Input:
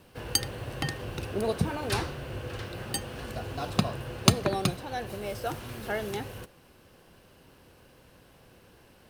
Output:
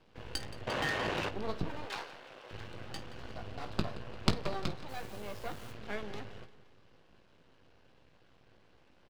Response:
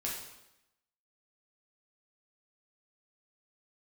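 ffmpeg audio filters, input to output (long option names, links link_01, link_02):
-filter_complex "[0:a]lowpass=frequency=4800:width=0.5412,lowpass=frequency=4800:width=1.3066,aeval=exprs='max(val(0),0)':channel_layout=same,asettb=1/sr,asplit=3[link_01][link_02][link_03];[link_01]atrim=end=1.854[link_04];[link_02]atrim=start=1.85:end=2.51,asetpts=PTS-STARTPTS,afade=type=in:duration=0.004:curve=qsin,afade=type=out:start_time=0.656:duration=0.004:curve=qsin,highpass=520[link_05];[link_03]atrim=start=2.506[link_06];[link_04][link_05]acrossfade=duration=0.004:curve1=hsin:curve2=qsin[link_07];[link_07][link_06]acrossfade=duration=0.004:curve1=qsin:curve2=hsin,aecho=1:1:174|348|522|696:0.141|0.0706|0.0353|0.0177,asettb=1/sr,asplit=3[link_08][link_09][link_10];[link_08]atrim=end=0.674[link_11];[link_09]atrim=start=0.67:end=1.29,asetpts=PTS-STARTPTS,afade=type=in:duration=0.004:curve=qsin,afade=type=out:start_time=0.616:duration=0.004:curve=qsin,asplit=2[link_12][link_13];[link_13]highpass=frequency=720:poles=1,volume=31dB,asoftclip=type=tanh:threshold=-18dB[link_14];[link_12][link_14]amix=inputs=2:normalize=0,lowpass=frequency=2300:poles=1,volume=-6dB[link_15];[link_10]atrim=start=1.286[link_16];[link_11][link_15]acrossfade=duration=0.004:curve1=hsin:curve2=qsin[link_17];[link_17][link_16]acrossfade=duration=0.004:curve1=qsin:curve2=hsin,asplit=3[link_18][link_19][link_20];[link_18]afade=type=out:start_time=4.88:duration=0.02[link_21];[link_19]acrusher=bits=5:dc=4:mix=0:aa=0.000001,afade=type=in:start_time=4.88:duration=0.02,afade=type=out:start_time=5.71:duration=0.02[link_22];[link_20]afade=type=in:start_time=5.71:duration=0.02[link_23];[link_21][link_22][link_23]amix=inputs=3:normalize=0,asplit=2[link_24][link_25];[link_25]aecho=0:1:19|51:0.316|0.141[link_26];[link_24][link_26]amix=inputs=2:normalize=0,volume=-5dB"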